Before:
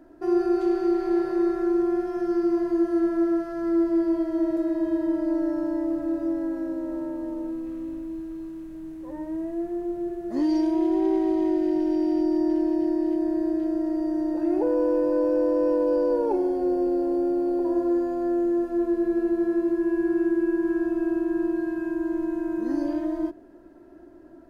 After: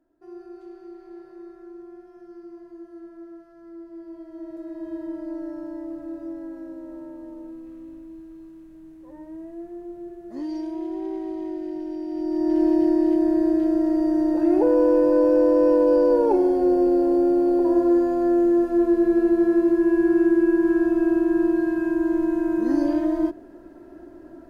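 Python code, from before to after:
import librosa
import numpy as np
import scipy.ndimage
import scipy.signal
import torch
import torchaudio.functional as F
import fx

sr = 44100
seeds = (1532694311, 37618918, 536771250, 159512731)

y = fx.gain(x, sr, db=fx.line((3.85, -19.0), (4.96, -7.5), (12.07, -7.5), (12.64, 5.0)))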